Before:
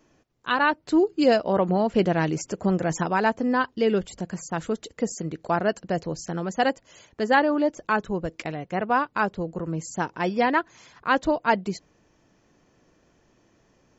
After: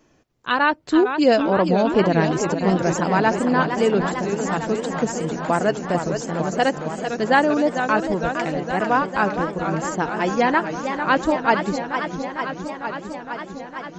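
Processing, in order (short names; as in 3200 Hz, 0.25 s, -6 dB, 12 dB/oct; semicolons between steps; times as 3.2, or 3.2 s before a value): warbling echo 0.456 s, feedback 79%, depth 197 cents, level -8 dB; gain +3 dB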